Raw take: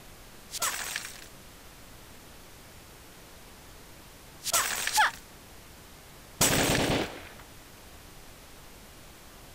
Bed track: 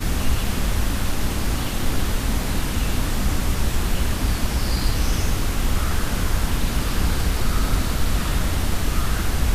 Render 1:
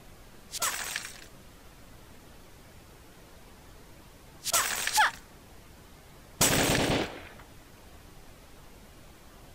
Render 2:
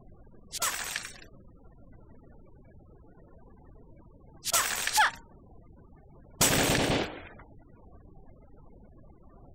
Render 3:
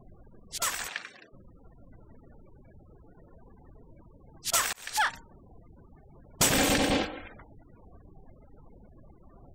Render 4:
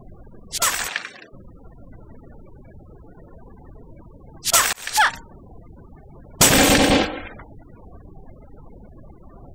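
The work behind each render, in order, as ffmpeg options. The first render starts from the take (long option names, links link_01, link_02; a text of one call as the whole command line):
ffmpeg -i in.wav -af "afftdn=noise_reduction=6:noise_floor=-51" out.wav
ffmpeg -i in.wav -af "bandreject=frequency=309.7:width_type=h:width=4,bandreject=frequency=619.4:width_type=h:width=4,bandreject=frequency=929.1:width_type=h:width=4,afftfilt=real='re*gte(hypot(re,im),0.00501)':imag='im*gte(hypot(re,im),0.00501)':win_size=1024:overlap=0.75" out.wav
ffmpeg -i in.wav -filter_complex "[0:a]asplit=3[link_01][link_02][link_03];[link_01]afade=type=out:start_time=0.87:duration=0.02[link_04];[link_02]highpass=260,lowpass=3300,afade=type=in:start_time=0.87:duration=0.02,afade=type=out:start_time=1.32:duration=0.02[link_05];[link_03]afade=type=in:start_time=1.32:duration=0.02[link_06];[link_04][link_05][link_06]amix=inputs=3:normalize=0,asettb=1/sr,asplit=3[link_07][link_08][link_09];[link_07]atrim=end=6.544[link_10];[link_08]atrim=start=6.54:end=7.33,asetpts=PTS-STARTPTS,afade=type=in:duration=0.004:curve=qsin,afade=type=out:start_time=0.786:duration=0.004:curve=qsin,aecho=1:1:3.8:0.55,atrim=end_sample=34839[link_11];[link_09]atrim=start=7.326[link_12];[link_10][link_11]acrossfade=duration=0.004:curve1=hsin:curve2=qsin[link_13];[link_13][link_12]acrossfade=duration=0.004:curve1=qsin:curve2=hsin,asplit=2[link_14][link_15];[link_14]atrim=end=4.73,asetpts=PTS-STARTPTS,afade=type=out:start_time=4.726:duration=0.004:curve=hsin[link_16];[link_15]atrim=start=4.73,asetpts=PTS-STARTPTS,afade=type=in:duration=0.41[link_17];[link_16][link_17]concat=n=2:v=0:a=1" out.wav
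ffmpeg -i in.wav -af "volume=10dB" out.wav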